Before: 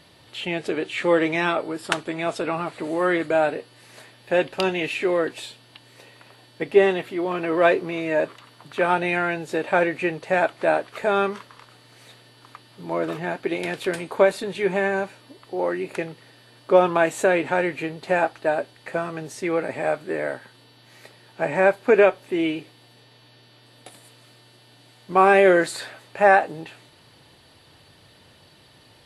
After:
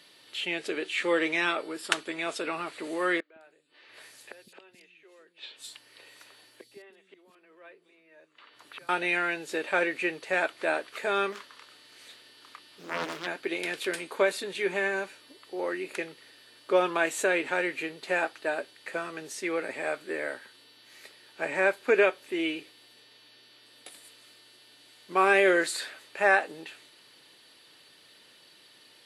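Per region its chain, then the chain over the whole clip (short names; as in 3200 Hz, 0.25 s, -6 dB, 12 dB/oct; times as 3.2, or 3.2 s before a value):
3.2–8.89 flipped gate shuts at -24 dBFS, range -27 dB + three bands offset in time mids, lows, highs 0.16/0.21 s, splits 260/3900 Hz
11.32–13.27 doubler 30 ms -12 dB + Doppler distortion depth 0.95 ms
whole clip: HPF 400 Hz 12 dB/oct; bell 750 Hz -10 dB 1.4 oct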